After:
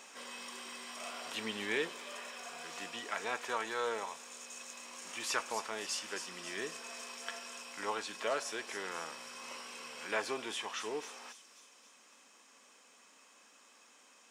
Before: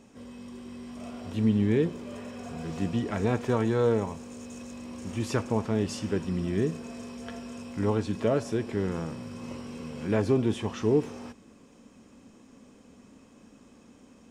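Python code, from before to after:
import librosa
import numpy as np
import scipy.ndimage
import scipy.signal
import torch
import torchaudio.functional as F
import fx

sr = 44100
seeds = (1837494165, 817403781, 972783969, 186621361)

p1 = scipy.signal.sosfilt(scipy.signal.butter(2, 1100.0, 'highpass', fs=sr, output='sos'), x)
p2 = fx.rider(p1, sr, range_db=10, speed_s=2.0)
p3 = fx.vibrato(p2, sr, rate_hz=5.7, depth_cents=5.7)
p4 = p3 + fx.echo_wet_highpass(p3, sr, ms=271, feedback_pct=56, hz=4900.0, wet_db=-6.0, dry=0)
y = F.gain(torch.from_numpy(p4), 1.5).numpy()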